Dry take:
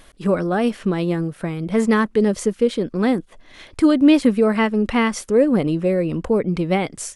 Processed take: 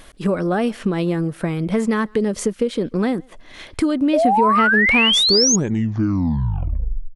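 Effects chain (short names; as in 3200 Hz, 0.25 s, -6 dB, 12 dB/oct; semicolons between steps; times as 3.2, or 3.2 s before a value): tape stop at the end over 1.93 s; compressor 6:1, threshold -20 dBFS, peak gain reduction 11 dB; painted sound rise, 4.13–5.56, 570–6800 Hz -20 dBFS; speakerphone echo 0.14 s, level -27 dB; gain +4 dB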